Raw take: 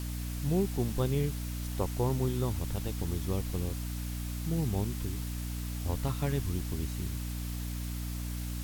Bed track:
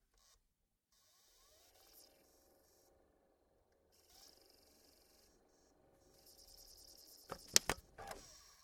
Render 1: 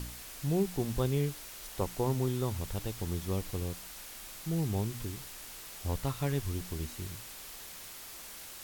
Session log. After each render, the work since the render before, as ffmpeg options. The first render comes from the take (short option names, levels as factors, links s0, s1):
-af "bandreject=f=60:t=h:w=4,bandreject=f=120:t=h:w=4,bandreject=f=180:t=h:w=4,bandreject=f=240:t=h:w=4,bandreject=f=300:t=h:w=4"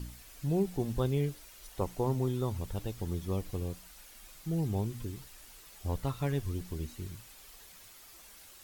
-af "afftdn=nr=9:nf=-47"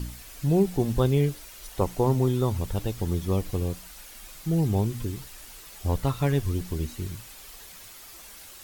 -af "volume=2.51"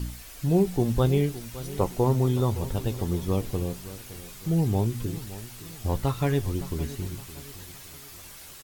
-filter_complex "[0:a]asplit=2[s0][s1];[s1]adelay=17,volume=0.251[s2];[s0][s2]amix=inputs=2:normalize=0,aecho=1:1:565|1130|1695|2260:0.168|0.0705|0.0296|0.0124"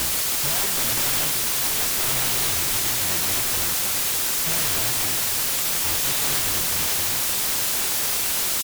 -af "aexciter=amount=11.1:drive=4.4:freq=2100,aeval=exprs='(mod(7.08*val(0)+1,2)-1)/7.08':c=same"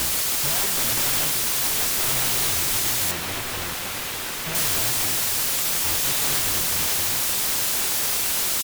-filter_complex "[0:a]asettb=1/sr,asplit=3[s0][s1][s2];[s0]atrim=end=3.114[s3];[s1]atrim=start=3.11:end=4.55,asetpts=PTS-STARTPTS,afade=t=in:d=0.004:c=qsin,afade=t=out:st=1.436:d=0.004:c=qsin,acrossover=split=3600[s4][s5];[s5]acompressor=threshold=0.0316:ratio=4:attack=1:release=60[s6];[s4][s6]amix=inputs=2:normalize=0[s7];[s2]atrim=start=4.546[s8];[s3][s7]acrossfade=d=0.004:c1=hsin:c2=qsin[s9];[s9][s8]acrossfade=d=0.004:c1=qsin:c2=hsin"